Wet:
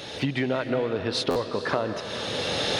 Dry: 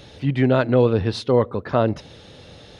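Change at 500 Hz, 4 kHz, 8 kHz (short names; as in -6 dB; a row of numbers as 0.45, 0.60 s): -7.0 dB, +7.0 dB, n/a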